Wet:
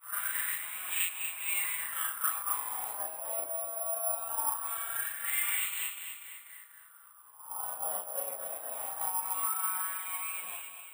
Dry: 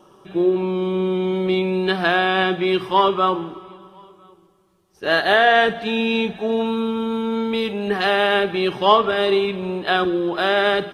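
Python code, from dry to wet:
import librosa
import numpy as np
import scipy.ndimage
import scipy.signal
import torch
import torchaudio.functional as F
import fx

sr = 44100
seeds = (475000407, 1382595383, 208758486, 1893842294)

y = x[::-1].copy()
y = fx.high_shelf(y, sr, hz=2900.0, db=-8.5)
y = fx.spec_gate(y, sr, threshold_db=-20, keep='weak')
y = fx.rider(y, sr, range_db=4, speed_s=0.5)
y = fx.peak_eq(y, sr, hz=1100.0, db=7.0, octaves=0.95)
y = fx.doubler(y, sr, ms=37.0, db=-2.0)
y = fx.echo_feedback(y, sr, ms=244, feedback_pct=60, wet_db=-9)
y = fx.wah_lfo(y, sr, hz=0.21, low_hz=600.0, high_hz=2500.0, q=5.1)
y = (np.kron(scipy.signal.resample_poly(y, 1, 4), np.eye(4)[0]) * 4)[:len(y)]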